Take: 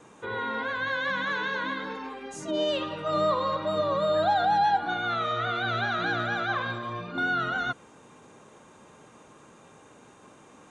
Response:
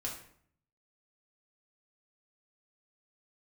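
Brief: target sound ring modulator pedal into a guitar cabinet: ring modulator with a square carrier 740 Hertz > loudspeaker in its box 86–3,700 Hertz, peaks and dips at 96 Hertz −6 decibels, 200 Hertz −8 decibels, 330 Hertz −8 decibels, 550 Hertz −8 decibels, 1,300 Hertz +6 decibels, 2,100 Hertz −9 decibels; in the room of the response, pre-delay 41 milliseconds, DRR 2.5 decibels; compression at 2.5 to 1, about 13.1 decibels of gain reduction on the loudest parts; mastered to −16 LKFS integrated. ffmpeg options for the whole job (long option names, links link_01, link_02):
-filter_complex "[0:a]acompressor=threshold=-41dB:ratio=2.5,asplit=2[link_01][link_02];[1:a]atrim=start_sample=2205,adelay=41[link_03];[link_02][link_03]afir=irnorm=-1:irlink=0,volume=-3.5dB[link_04];[link_01][link_04]amix=inputs=2:normalize=0,aeval=exprs='val(0)*sgn(sin(2*PI*740*n/s))':channel_layout=same,highpass=86,equalizer=frequency=96:width_type=q:width=4:gain=-6,equalizer=frequency=200:width_type=q:width=4:gain=-8,equalizer=frequency=330:width_type=q:width=4:gain=-8,equalizer=frequency=550:width_type=q:width=4:gain=-8,equalizer=frequency=1300:width_type=q:width=4:gain=6,equalizer=frequency=2100:width_type=q:width=4:gain=-9,lowpass=frequency=3700:width=0.5412,lowpass=frequency=3700:width=1.3066,volume=21dB"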